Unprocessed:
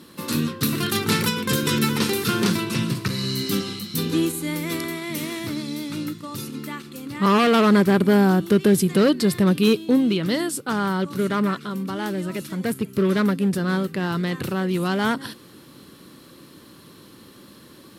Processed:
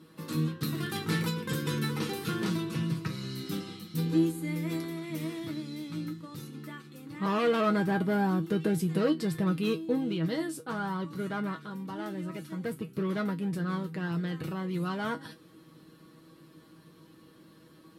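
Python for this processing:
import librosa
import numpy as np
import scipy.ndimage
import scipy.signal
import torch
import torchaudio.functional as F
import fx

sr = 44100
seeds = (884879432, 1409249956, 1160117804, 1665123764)

y = fx.high_shelf(x, sr, hz=2400.0, db=-8.0)
y = fx.comb_fb(y, sr, f0_hz=160.0, decay_s=0.15, harmonics='all', damping=0.0, mix_pct=90)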